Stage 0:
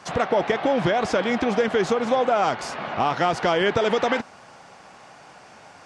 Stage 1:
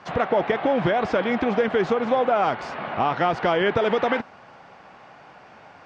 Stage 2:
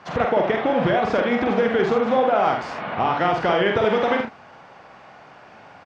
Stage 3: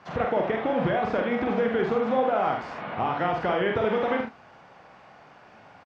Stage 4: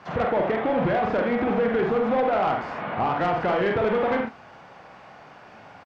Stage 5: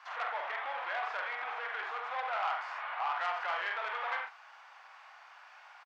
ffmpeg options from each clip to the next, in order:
-af "lowpass=3100"
-af "aecho=1:1:46|77:0.596|0.447"
-filter_complex "[0:a]acrossover=split=3400[s0][s1];[s1]acompressor=threshold=0.00355:ratio=4:attack=1:release=60[s2];[s0][s2]amix=inputs=2:normalize=0,lowshelf=f=200:g=3,asplit=2[s3][s4];[s4]adelay=27,volume=0.237[s5];[s3][s5]amix=inputs=2:normalize=0,volume=0.501"
-filter_complex "[0:a]acrossover=split=2800[s0][s1];[s1]acompressor=threshold=0.00158:ratio=4:attack=1:release=60[s2];[s0][s2]amix=inputs=2:normalize=0,asoftclip=type=tanh:threshold=0.0891,volume=1.68"
-af "highpass=f=930:w=0.5412,highpass=f=930:w=1.3066,volume=0.596"

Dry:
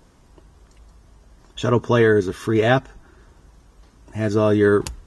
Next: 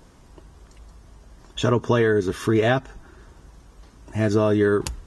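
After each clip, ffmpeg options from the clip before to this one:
-af "acompressor=threshold=0.126:ratio=6,volume=1.33"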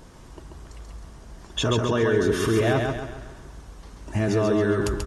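-filter_complex "[0:a]alimiter=limit=0.119:level=0:latency=1:release=17,asplit=2[s0][s1];[s1]aecho=0:1:136|272|408|544|680|816:0.631|0.278|0.122|0.0537|0.0236|0.0104[s2];[s0][s2]amix=inputs=2:normalize=0,volume=1.5"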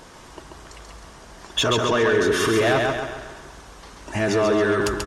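-filter_complex "[0:a]asplit=2[s0][s1];[s1]highpass=f=720:p=1,volume=5.01,asoftclip=type=tanh:threshold=0.335[s2];[s0][s2]amix=inputs=2:normalize=0,lowpass=f=7100:p=1,volume=0.501,aecho=1:1:214:0.119"

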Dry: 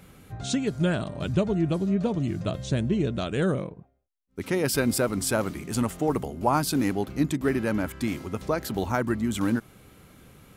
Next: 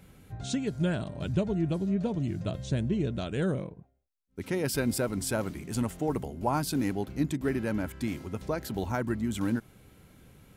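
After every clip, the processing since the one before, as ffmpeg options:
-af "lowshelf=f=170:g=4.5,bandreject=f=1200:w=9.9,volume=0.531"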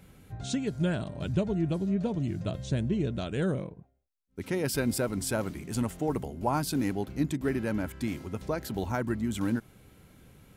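-af anull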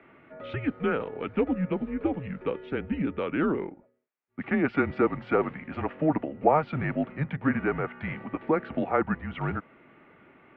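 -af "highpass=260,highpass=f=350:t=q:w=0.5412,highpass=f=350:t=q:w=1.307,lowpass=f=2600:t=q:w=0.5176,lowpass=f=2600:t=q:w=0.7071,lowpass=f=2600:t=q:w=1.932,afreqshift=-150,volume=2.66"

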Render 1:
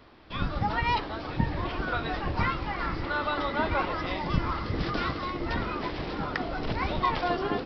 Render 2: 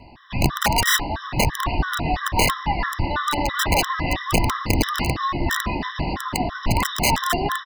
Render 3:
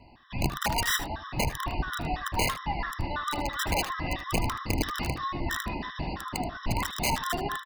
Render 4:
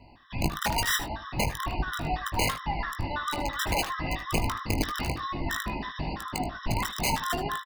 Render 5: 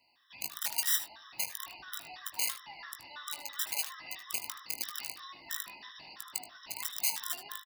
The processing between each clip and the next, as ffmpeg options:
-af "aecho=1:1:1.1:0.6,aeval=exprs='(mod(7.94*val(0)+1,2)-1)/7.94':c=same,afftfilt=real='re*gt(sin(2*PI*3*pts/sr)*(1-2*mod(floor(b*sr/1024/1000),2)),0)':imag='im*gt(sin(2*PI*3*pts/sr)*(1-2*mod(floor(b*sr/1024/1000),2)),0)':win_size=1024:overlap=0.75,volume=2.82"
-af "aecho=1:1:77:0.211,volume=0.376"
-filter_complex "[0:a]asplit=2[s0][s1];[s1]adelay=19,volume=0.355[s2];[s0][s2]amix=inputs=2:normalize=0"
-af "aderivative"

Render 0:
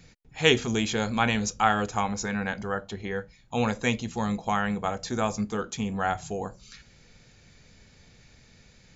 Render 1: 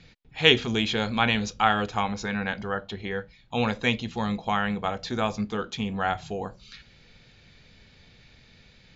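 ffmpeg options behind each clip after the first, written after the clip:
-af "lowpass=f=3700:t=q:w=1.8"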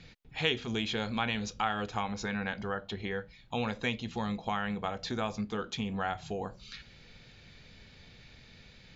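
-af "acompressor=threshold=0.0178:ratio=2"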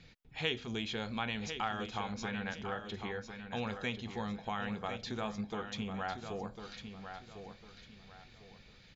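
-af "aecho=1:1:1051|2102|3153|4204:0.376|0.113|0.0338|0.0101,volume=0.562"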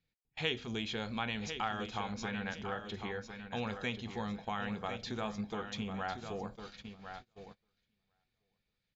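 -af "agate=range=0.0501:threshold=0.00447:ratio=16:detection=peak"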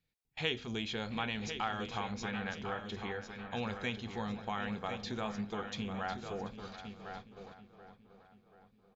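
-filter_complex "[0:a]asplit=2[s0][s1];[s1]adelay=734,lowpass=f=2900:p=1,volume=0.237,asplit=2[s2][s3];[s3]adelay=734,lowpass=f=2900:p=1,volume=0.49,asplit=2[s4][s5];[s5]adelay=734,lowpass=f=2900:p=1,volume=0.49,asplit=2[s6][s7];[s7]adelay=734,lowpass=f=2900:p=1,volume=0.49,asplit=2[s8][s9];[s9]adelay=734,lowpass=f=2900:p=1,volume=0.49[s10];[s0][s2][s4][s6][s8][s10]amix=inputs=6:normalize=0"

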